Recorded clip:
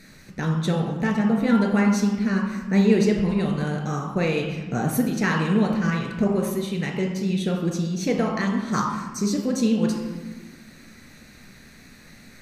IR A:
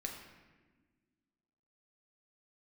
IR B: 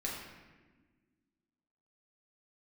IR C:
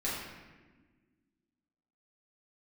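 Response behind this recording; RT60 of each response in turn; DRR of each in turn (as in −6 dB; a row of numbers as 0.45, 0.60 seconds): A; 1.4, 1.4, 1.4 seconds; 1.0, −4.0, −8.0 decibels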